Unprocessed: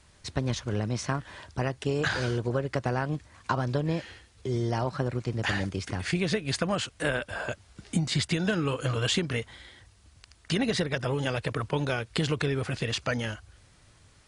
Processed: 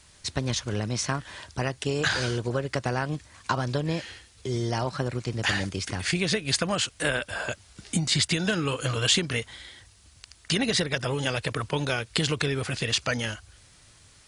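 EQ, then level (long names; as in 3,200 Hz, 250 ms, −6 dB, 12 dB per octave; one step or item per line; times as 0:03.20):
high-shelf EQ 2,400 Hz +9 dB
0.0 dB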